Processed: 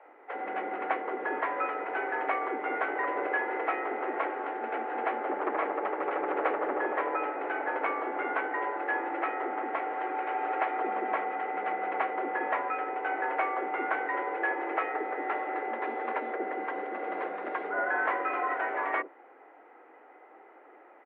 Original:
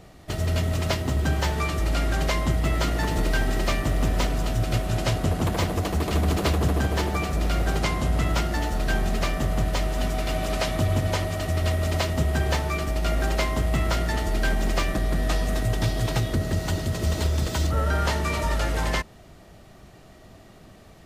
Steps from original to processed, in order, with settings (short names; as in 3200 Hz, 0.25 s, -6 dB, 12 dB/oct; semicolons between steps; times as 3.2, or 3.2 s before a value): mistuned SSB +120 Hz 240–2000 Hz; bands offset in time highs, lows 50 ms, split 470 Hz